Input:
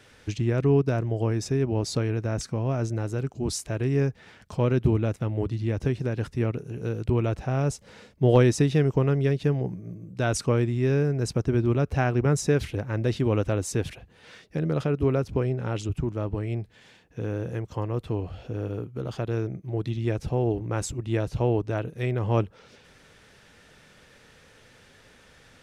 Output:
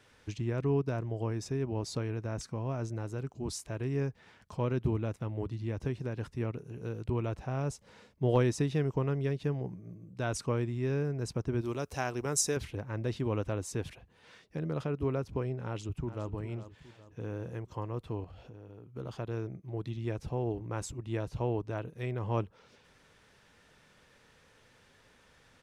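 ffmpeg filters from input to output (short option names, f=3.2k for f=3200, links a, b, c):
-filter_complex "[0:a]asettb=1/sr,asplit=3[a][b][c];[a]atrim=end=11.614[d];[b]atrim=start=11.61:end=12.57,asetpts=PTS-STARTPTS,afade=t=in:d=0.004:c=qsin,afade=t=out:st=0.956:d=0.004:c=qsin,bass=f=250:g=-8,treble=f=4k:g=15[e];[c]atrim=start=12.566[f];[d][e]acrossfade=d=0.004:c1=hsin:c2=qsin[g];[g][f]acrossfade=d=0.004:c1=qsin:c2=hsin,asplit=2[h][i];[i]afade=t=in:st=15.66:d=0.01,afade=t=out:st=16.27:d=0.01,aecho=0:1:410|820|1230|1640|2050:0.251189|0.113035|0.0508657|0.0228896|0.0103003[j];[h][j]amix=inputs=2:normalize=0,asettb=1/sr,asplit=3[k][l][m];[k]atrim=end=18.244[n];[l]atrim=start=18.24:end=18.95,asetpts=PTS-STARTPTS,afade=t=in:d=0.004:c=qsin,afade=t=out:st=0.706:d=0.004:c=qsin,acompressor=threshold=-37dB:ratio=6:attack=3.2:release=140:knee=1:detection=peak[o];[m]atrim=start=18.946[p];[n][o]acrossfade=d=0.004:c1=hsin:c2=qsin[q];[q][p]acrossfade=d=0.004:c1=qsin:c2=hsin,equalizer=f=1k:t=o:w=0.42:g=5,volume=-8.5dB"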